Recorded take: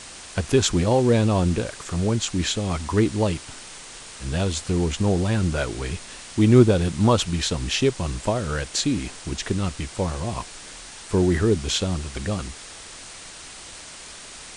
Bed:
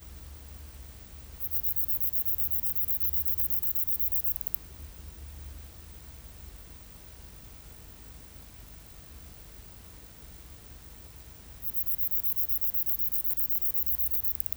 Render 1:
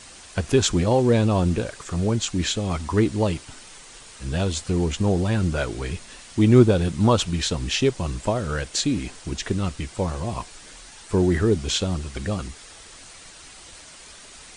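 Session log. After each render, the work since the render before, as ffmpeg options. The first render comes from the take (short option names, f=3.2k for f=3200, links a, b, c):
-af "afftdn=nr=6:nf=-41"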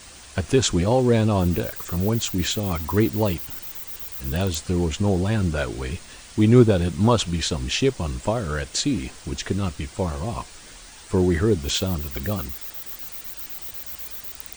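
-filter_complex "[1:a]volume=-7dB[a];[0:a][a]amix=inputs=2:normalize=0"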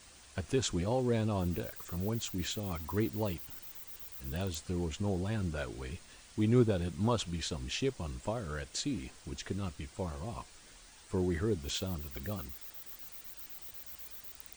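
-af "volume=-12.5dB"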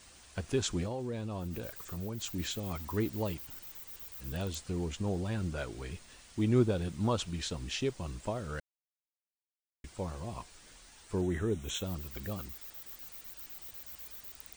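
-filter_complex "[0:a]asettb=1/sr,asplit=3[a][b][c];[a]atrim=end=0.864[d];[b]atrim=start=0.86:end=2.24,asetpts=PTS-STARTPTS,afade=t=in:d=0.004:c=qsin,afade=t=out:st=1.376:d=0.004:c=qsin,acompressor=threshold=-35dB:ratio=3:attack=3.2:release=140:knee=1:detection=peak[e];[c]atrim=start=2.236[f];[d][e]acrossfade=d=0.004:c1=hsin:c2=qsin[g];[g][f]acrossfade=d=0.004:c1=qsin:c2=hsin,asettb=1/sr,asplit=3[h][i][j];[h]atrim=end=11.214[k];[i]atrim=start=11.21:end=11.84,asetpts=PTS-STARTPTS,afade=t=in:d=0.004:c=qsin,afade=t=out:st=0.626:d=0.004:c=qsin,asuperstop=centerf=4700:order=8:qfactor=3.1[l];[j]atrim=start=11.836[m];[k][l]acrossfade=d=0.004:c1=hsin:c2=qsin[n];[n][m]acrossfade=d=0.004:c1=qsin:c2=hsin,asplit=3[o][p][q];[o]atrim=end=8.6,asetpts=PTS-STARTPTS,afade=t=out:st=8.596:d=0.004:c=hsin[r];[p]atrim=start=8.6:end=9.84,asetpts=PTS-STARTPTS,volume=0[s];[q]atrim=start=9.84,asetpts=PTS-STARTPTS,afade=t=in:d=0.004:c=hsin[t];[r][s][t]concat=n=3:v=0:a=1"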